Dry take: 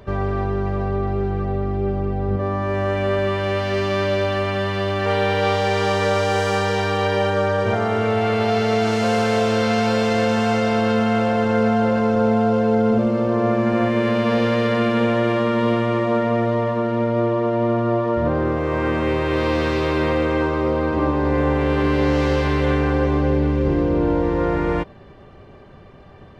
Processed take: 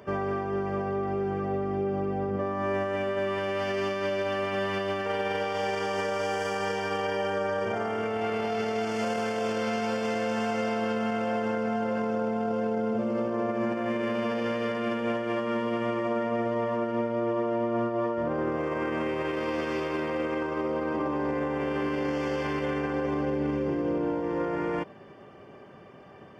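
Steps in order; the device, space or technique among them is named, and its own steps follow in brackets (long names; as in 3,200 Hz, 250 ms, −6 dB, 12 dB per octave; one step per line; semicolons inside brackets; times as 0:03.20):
PA system with an anti-feedback notch (high-pass filter 180 Hz 12 dB per octave; Butterworth band-reject 3,900 Hz, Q 4.4; brickwall limiter −18.5 dBFS, peak gain reduction 11.5 dB)
level −2.5 dB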